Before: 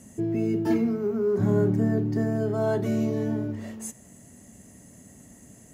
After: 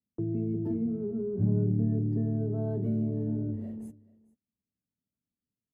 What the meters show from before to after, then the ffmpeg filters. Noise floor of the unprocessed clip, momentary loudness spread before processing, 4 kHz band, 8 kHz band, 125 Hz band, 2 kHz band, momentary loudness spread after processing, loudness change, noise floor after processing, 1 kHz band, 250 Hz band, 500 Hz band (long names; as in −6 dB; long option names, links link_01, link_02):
−51 dBFS, 11 LU, can't be measured, below −25 dB, −0.5 dB, below −25 dB, 8 LU, −4.5 dB, below −85 dBFS, below −15 dB, −5.0 dB, −10.0 dB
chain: -filter_complex "[0:a]firequalizer=gain_entry='entry(170,0);entry(430,-3);entry(1100,-19);entry(1900,-21)':delay=0.05:min_phase=1,agate=range=-42dB:threshold=-42dB:ratio=16:detection=peak,acrossover=split=190[link_01][link_02];[link_02]acompressor=threshold=-33dB:ratio=6[link_03];[link_01][link_03]amix=inputs=2:normalize=0,equalizer=frequency=6600:width=1.5:gain=-12,aecho=1:1:435:0.075"